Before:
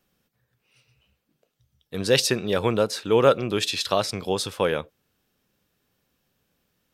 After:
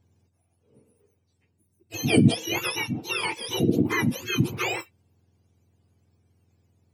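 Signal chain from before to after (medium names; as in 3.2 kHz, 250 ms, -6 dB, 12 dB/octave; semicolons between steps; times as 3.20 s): spectrum inverted on a logarithmic axis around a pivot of 1.1 kHz; 2.68–3.54 s: compression, threshold -25 dBFS, peak gain reduction 7.5 dB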